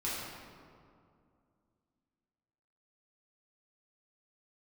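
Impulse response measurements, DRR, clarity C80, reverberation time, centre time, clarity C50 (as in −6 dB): −8.5 dB, 0.5 dB, 2.3 s, 120 ms, −1.5 dB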